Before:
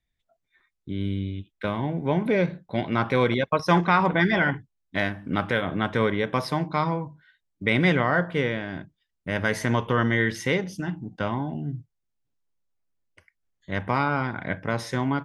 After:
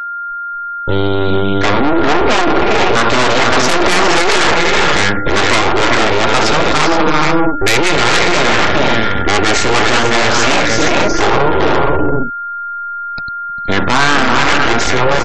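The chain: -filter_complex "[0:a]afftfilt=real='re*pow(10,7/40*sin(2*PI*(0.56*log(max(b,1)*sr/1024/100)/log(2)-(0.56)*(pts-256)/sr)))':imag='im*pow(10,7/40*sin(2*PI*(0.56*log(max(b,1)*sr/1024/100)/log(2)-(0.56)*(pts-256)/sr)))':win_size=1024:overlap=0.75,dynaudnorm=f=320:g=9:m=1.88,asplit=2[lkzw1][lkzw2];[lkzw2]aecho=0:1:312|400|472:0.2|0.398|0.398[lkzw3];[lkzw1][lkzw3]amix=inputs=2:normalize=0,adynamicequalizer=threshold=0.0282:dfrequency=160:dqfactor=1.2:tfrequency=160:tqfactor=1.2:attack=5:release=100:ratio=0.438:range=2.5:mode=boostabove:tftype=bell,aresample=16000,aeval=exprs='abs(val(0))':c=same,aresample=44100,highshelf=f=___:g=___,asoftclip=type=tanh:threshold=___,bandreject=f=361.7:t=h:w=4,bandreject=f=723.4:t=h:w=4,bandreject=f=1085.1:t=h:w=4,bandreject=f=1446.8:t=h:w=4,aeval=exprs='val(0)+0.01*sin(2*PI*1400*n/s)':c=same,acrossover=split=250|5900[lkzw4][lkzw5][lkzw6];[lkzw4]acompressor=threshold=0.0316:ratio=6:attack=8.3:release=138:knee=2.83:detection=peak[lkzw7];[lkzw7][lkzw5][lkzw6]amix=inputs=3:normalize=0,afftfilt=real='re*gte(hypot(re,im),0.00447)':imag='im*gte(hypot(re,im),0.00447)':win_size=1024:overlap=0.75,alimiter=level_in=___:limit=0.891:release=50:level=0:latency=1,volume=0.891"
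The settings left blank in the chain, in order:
6300, 4, 0.178, 11.9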